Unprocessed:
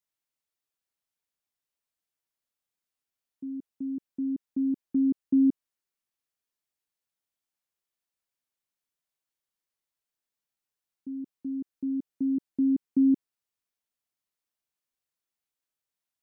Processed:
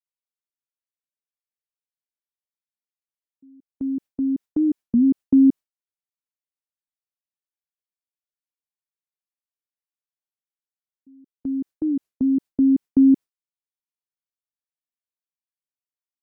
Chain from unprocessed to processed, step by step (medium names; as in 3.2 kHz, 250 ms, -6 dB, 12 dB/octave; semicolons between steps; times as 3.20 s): gate with hold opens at -29 dBFS; warped record 33 1/3 rpm, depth 250 cents; trim +7.5 dB